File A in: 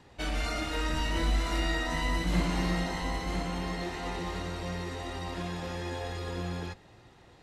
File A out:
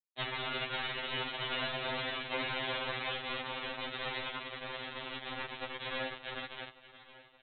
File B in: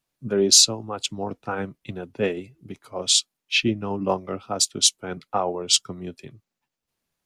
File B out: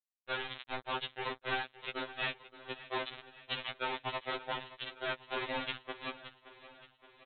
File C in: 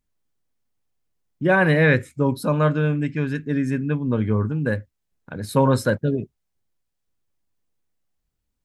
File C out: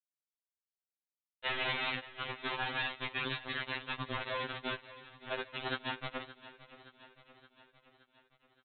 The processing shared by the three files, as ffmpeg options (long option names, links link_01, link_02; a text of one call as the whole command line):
ffmpeg -i in.wav -af "highpass=frequency=380:width=0.5412,highpass=frequency=380:width=1.3066,afftfilt=real='re*lt(hypot(re,im),0.141)':imag='im*lt(hypot(re,im),0.141)':win_size=1024:overlap=0.75,bandreject=frequency=1200:width=8.7,adynamicequalizer=threshold=0.00891:dfrequency=2200:dqfactor=3:tfrequency=2200:tqfactor=3:attack=5:release=100:ratio=0.375:range=2.5:mode=cutabove:tftype=bell,acompressor=threshold=-41dB:ratio=2,aresample=8000,acrusher=bits=5:mix=0:aa=0.000001,aresample=44100,aecho=1:1:571|1142|1713|2284|2855|3426:0.15|0.0883|0.0521|0.0307|0.0181|0.0107,afftfilt=real='re*2.45*eq(mod(b,6),0)':imag='im*2.45*eq(mod(b,6),0)':win_size=2048:overlap=0.75,volume=7.5dB" out.wav